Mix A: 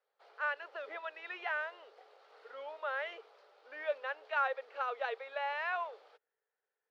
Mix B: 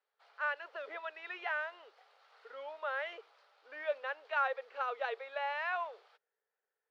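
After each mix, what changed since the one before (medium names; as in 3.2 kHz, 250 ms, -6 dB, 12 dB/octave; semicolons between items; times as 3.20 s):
background: add high-pass 920 Hz 12 dB/octave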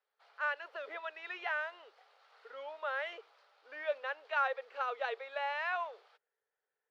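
speech: add treble shelf 6 kHz +8 dB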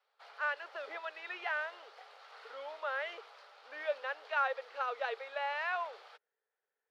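background +10.0 dB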